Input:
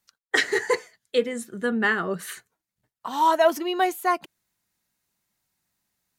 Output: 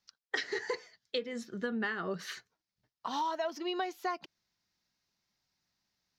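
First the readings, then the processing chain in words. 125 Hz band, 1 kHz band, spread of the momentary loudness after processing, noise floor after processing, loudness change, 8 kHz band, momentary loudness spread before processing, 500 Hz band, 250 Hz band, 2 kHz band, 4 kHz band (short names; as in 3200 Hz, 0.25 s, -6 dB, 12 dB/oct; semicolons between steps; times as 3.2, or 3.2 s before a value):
-8.0 dB, -13.0 dB, 7 LU, under -85 dBFS, -12.5 dB, -14.0 dB, 12 LU, -13.0 dB, -10.0 dB, -12.5 dB, -8.5 dB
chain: resonant high shelf 7000 Hz -11 dB, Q 3; compressor 16:1, threshold -26 dBFS, peak gain reduction 14 dB; gain -4.5 dB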